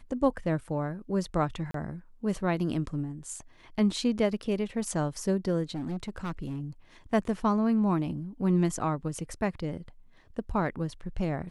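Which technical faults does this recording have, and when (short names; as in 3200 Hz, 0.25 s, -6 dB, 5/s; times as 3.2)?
1.71–1.74 gap 33 ms
5.74–6.61 clipped -30 dBFS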